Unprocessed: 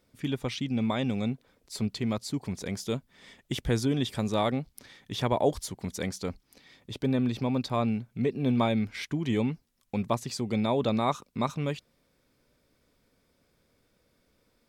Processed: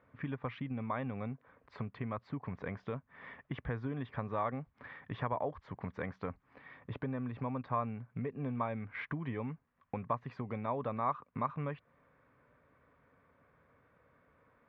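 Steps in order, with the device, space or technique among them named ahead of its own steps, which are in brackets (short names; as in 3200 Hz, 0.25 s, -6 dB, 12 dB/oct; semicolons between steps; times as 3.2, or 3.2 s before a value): bass amplifier (compressor 4:1, threshold -38 dBFS, peak gain reduction 16 dB; speaker cabinet 76–2100 Hz, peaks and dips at 210 Hz -7 dB, 350 Hz -9 dB, 1100 Hz +9 dB, 1700 Hz +4 dB); gain +3.5 dB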